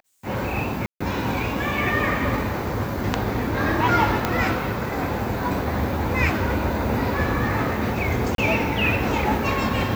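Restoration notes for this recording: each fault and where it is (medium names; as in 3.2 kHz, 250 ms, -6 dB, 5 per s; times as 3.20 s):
0.86–1.00 s: dropout 145 ms
4.25 s: pop -6 dBFS
8.35–8.38 s: dropout 32 ms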